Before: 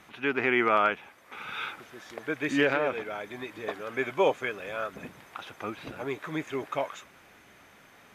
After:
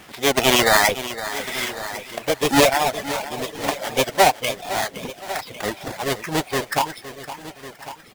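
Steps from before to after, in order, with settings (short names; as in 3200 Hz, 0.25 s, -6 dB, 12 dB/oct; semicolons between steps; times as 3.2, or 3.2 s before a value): half-waves squared off; formant shift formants +6 st; feedback echo 1.1 s, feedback 33%, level -15 dB; reverb removal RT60 0.86 s; lo-fi delay 0.513 s, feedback 35%, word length 8-bit, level -13 dB; gain +5.5 dB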